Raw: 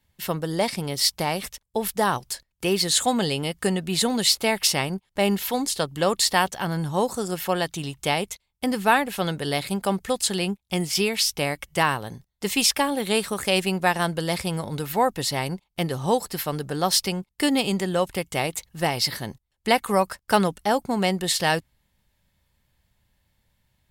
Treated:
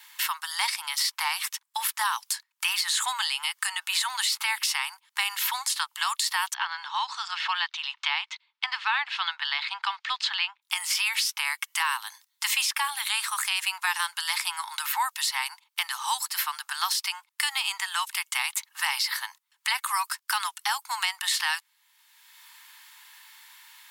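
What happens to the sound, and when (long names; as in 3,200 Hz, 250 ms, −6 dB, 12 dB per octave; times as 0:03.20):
0:06.54–0:10.62: low-pass filter 4,100 Hz 24 dB per octave
whole clip: Butterworth high-pass 900 Hz 72 dB per octave; brickwall limiter −17.5 dBFS; multiband upward and downward compressor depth 70%; level +3 dB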